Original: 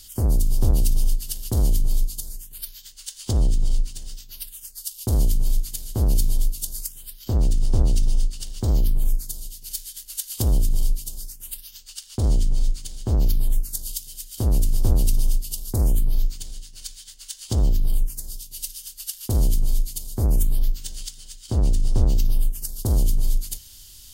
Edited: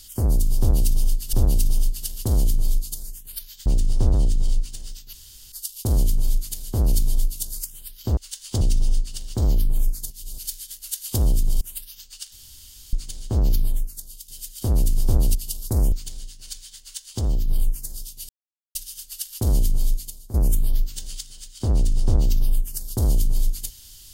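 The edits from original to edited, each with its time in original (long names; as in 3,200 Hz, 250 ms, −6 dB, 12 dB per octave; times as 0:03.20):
0:00.59–0:01.33: repeat, 2 plays
0:02.92–0:03.36: swap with 0:07.39–0:07.87
0:04.35–0:04.74: fill with room tone
0:09.36–0:09.64: reverse
0:10.87–0:11.37: remove
0:12.08–0:12.69: fill with room tone
0:13.39–0:14.04: fade out quadratic, to −11 dB
0:15.11–0:15.38: remove
0:15.95–0:16.26: remove
0:17.33–0:17.82: clip gain −3 dB
0:18.63: splice in silence 0.46 s
0:19.85–0:20.22: fade out quadratic, to −13 dB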